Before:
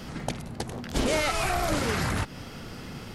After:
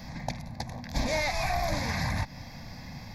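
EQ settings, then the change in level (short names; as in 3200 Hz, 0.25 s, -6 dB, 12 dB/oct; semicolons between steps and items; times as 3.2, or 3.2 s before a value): fixed phaser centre 2000 Hz, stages 8; 0.0 dB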